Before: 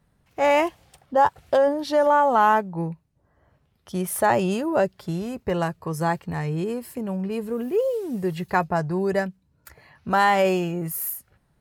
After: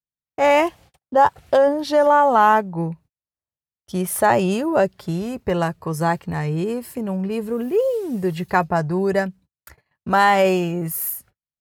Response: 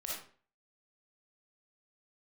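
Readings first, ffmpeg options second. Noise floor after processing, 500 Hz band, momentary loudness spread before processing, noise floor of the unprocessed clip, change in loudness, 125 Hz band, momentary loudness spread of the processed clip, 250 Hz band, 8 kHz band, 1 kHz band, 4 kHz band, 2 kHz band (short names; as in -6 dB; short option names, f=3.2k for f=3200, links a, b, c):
under -85 dBFS, +3.5 dB, 12 LU, -67 dBFS, +3.5 dB, +3.5 dB, 12 LU, +3.5 dB, +3.5 dB, +3.5 dB, +3.5 dB, +3.5 dB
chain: -af "agate=range=-42dB:threshold=-48dB:ratio=16:detection=peak,volume=3.5dB"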